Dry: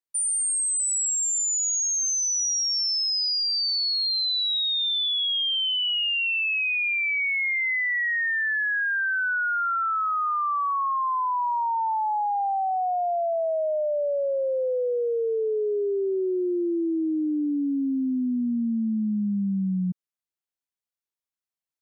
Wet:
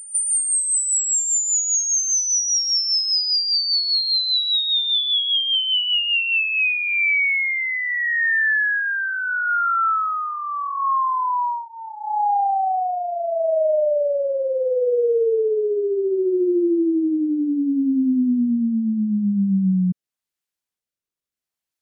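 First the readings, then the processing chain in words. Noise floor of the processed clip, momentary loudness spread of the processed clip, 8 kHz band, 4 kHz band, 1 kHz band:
below −85 dBFS, 5 LU, +4.5 dB, +4.5 dB, +3.0 dB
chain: rotating-speaker cabinet horn 5 Hz, later 0.75 Hz, at 0:06.19
echo ahead of the sound 189 ms −14.5 dB
level +7 dB

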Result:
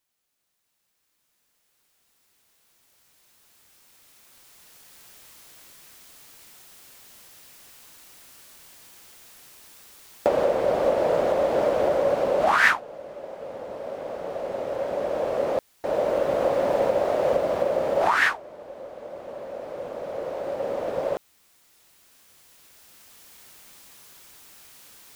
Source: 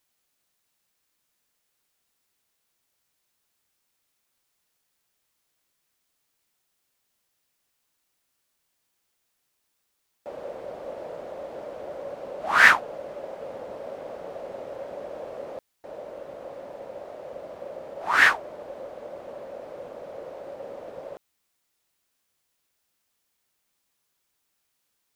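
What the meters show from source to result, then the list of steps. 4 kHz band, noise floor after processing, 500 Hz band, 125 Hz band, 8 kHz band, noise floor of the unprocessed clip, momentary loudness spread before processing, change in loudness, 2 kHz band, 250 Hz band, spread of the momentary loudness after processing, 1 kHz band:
−1.5 dB, −73 dBFS, +12.5 dB, +10.5 dB, +1.5 dB, −76 dBFS, 22 LU, +0.5 dB, −3.5 dB, +11.0 dB, 17 LU, +3.5 dB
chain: camcorder AGC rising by 5.9 dB per second
level −4 dB

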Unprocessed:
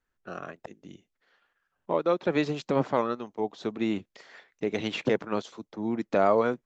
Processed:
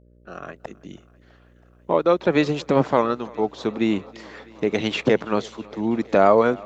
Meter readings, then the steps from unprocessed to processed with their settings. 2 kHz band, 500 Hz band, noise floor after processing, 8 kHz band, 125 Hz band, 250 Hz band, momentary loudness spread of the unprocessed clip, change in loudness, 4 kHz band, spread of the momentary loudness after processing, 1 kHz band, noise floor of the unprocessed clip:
+7.0 dB, +7.0 dB, −54 dBFS, can't be measured, +7.0 dB, +7.0 dB, 17 LU, +7.0 dB, +7.0 dB, 21 LU, +7.0 dB, −82 dBFS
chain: fade in at the beginning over 0.67 s
hum with harmonics 60 Hz, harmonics 10, −61 dBFS −5 dB per octave
feedback echo with a high-pass in the loop 326 ms, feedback 83%, high-pass 160 Hz, level −23.5 dB
level +7 dB

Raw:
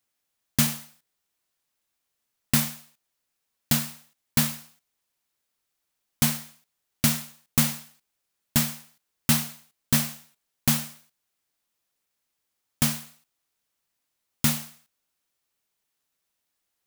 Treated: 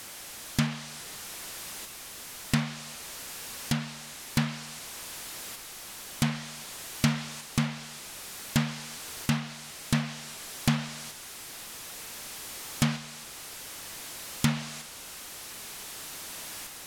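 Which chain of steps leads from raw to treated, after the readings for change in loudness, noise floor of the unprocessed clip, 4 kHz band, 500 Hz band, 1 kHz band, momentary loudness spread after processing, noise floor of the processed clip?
−8.5 dB, −80 dBFS, −2.5 dB, +0.5 dB, +0.5 dB, 11 LU, −44 dBFS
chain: converter with a step at zero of −31.5 dBFS
treble cut that deepens with the level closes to 2,700 Hz, closed at −18 dBFS
shaped tremolo saw up 0.54 Hz, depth 35%

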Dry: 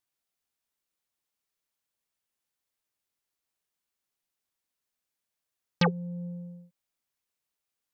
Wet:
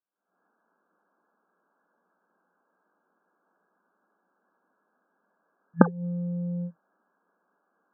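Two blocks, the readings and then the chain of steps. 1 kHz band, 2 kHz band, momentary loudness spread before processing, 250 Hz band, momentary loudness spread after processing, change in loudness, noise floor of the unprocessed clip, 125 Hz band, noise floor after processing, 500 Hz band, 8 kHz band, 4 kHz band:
+3.5 dB, 0.0 dB, 18 LU, +7.0 dB, 15 LU, +4.0 dB, below −85 dBFS, +4.0 dB, −76 dBFS, +5.0 dB, can't be measured, below −40 dB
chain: camcorder AGC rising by 79 dB per second
harmonic generator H 8 −29 dB, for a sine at 11.5 dBFS
brick-wall band-pass 170–1,700 Hz
level −6.5 dB

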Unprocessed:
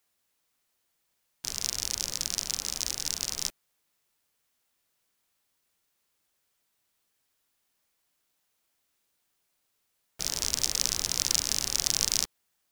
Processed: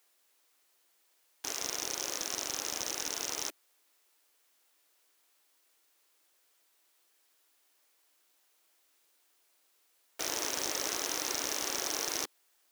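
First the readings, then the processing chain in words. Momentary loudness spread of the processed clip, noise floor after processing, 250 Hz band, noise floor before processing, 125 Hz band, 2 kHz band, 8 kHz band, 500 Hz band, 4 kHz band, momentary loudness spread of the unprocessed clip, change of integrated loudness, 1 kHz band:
6 LU, −71 dBFS, +1.5 dB, −77 dBFS, −12.0 dB, +1.5 dB, −6.0 dB, +5.5 dB, −7.0 dB, 9 LU, −5.5 dB, +5.0 dB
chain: Butterworth high-pass 280 Hz 48 dB per octave
slew-rate limiting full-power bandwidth 240 Hz
level +5.5 dB

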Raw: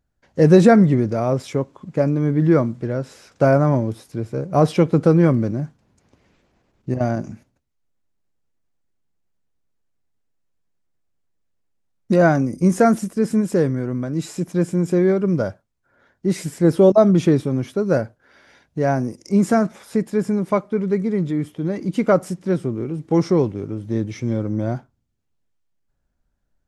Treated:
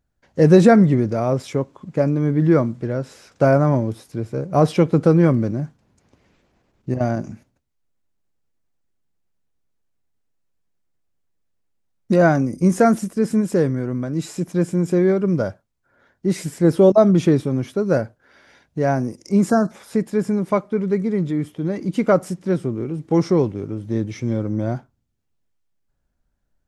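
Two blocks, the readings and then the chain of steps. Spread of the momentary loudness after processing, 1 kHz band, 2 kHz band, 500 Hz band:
12 LU, 0.0 dB, 0.0 dB, 0.0 dB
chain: time-frequency box erased 0:19.50–0:19.71, 1,800–3,900 Hz

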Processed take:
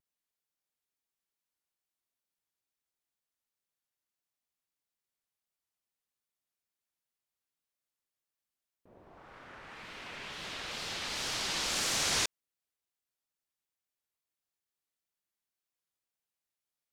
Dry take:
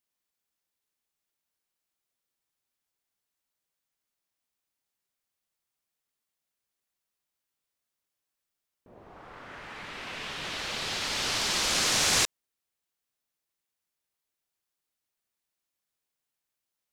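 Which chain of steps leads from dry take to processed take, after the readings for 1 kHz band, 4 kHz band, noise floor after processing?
−6.0 dB, −6.0 dB, below −85 dBFS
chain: tape wow and flutter 140 cents
level −6 dB

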